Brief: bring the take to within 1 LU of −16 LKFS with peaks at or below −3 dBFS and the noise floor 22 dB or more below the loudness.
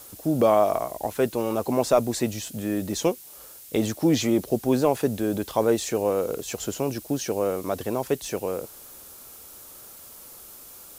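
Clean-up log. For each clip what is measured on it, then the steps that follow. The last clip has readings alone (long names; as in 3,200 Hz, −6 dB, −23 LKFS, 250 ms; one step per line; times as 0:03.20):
background noise floor −45 dBFS; target noise floor −47 dBFS; integrated loudness −25.0 LKFS; sample peak −8.5 dBFS; target loudness −16.0 LKFS
→ noise reduction from a noise print 6 dB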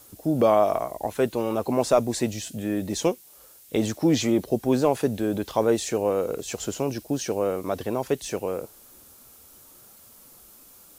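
background noise floor −51 dBFS; integrated loudness −25.5 LKFS; sample peak −9.0 dBFS; target loudness −16.0 LKFS
→ level +9.5 dB
brickwall limiter −3 dBFS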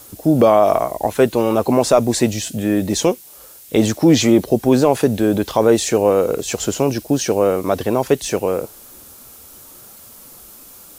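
integrated loudness −16.5 LKFS; sample peak −3.0 dBFS; background noise floor −42 dBFS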